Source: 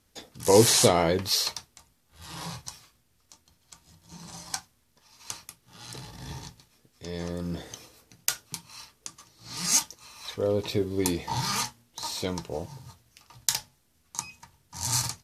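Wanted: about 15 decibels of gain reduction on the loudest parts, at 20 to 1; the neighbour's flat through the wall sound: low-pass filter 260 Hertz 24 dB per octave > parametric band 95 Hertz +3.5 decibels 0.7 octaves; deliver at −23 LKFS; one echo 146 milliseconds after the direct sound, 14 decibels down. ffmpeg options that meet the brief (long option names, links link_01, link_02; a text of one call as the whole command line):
ffmpeg -i in.wav -af "acompressor=threshold=-27dB:ratio=20,lowpass=frequency=260:width=0.5412,lowpass=frequency=260:width=1.3066,equalizer=frequency=95:width_type=o:width=0.7:gain=3.5,aecho=1:1:146:0.2,volume=18.5dB" out.wav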